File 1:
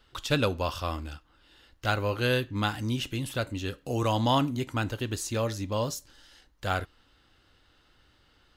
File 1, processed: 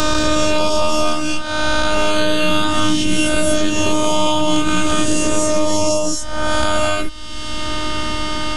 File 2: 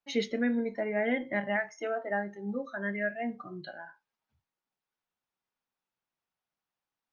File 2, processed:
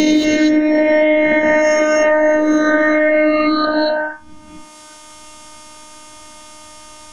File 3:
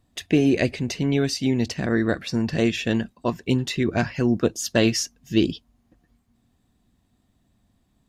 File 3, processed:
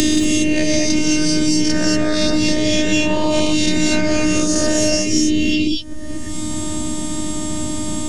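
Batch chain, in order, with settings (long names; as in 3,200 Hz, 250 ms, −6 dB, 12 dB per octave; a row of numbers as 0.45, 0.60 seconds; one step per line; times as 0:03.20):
peak hold with a rise ahead of every peak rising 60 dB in 0.94 s
Butterworth low-pass 9,900 Hz 48 dB per octave
parametric band 3,600 Hz −2.5 dB 0.34 octaves
in parallel at +1.5 dB: brickwall limiter −14.5 dBFS
on the sum: downward compressor 10 to 1, threshold −21 dBFS
bass and treble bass +10 dB, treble +6 dB
phases set to zero 306 Hz
reverb whose tail is shaped and stops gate 260 ms rising, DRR −1 dB
multiband upward and downward compressor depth 100%
normalise the peak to −2 dBFS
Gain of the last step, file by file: +6.5, +11.0, +5.5 decibels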